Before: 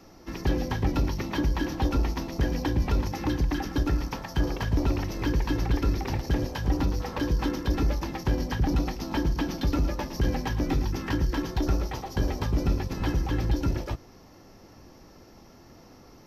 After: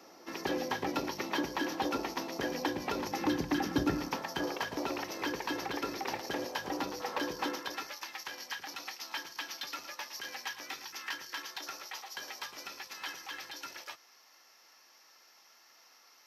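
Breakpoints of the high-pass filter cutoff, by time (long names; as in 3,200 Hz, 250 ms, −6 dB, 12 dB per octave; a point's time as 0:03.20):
0:02.86 400 Hz
0:03.81 160 Hz
0:04.58 490 Hz
0:07.47 490 Hz
0:07.93 1,500 Hz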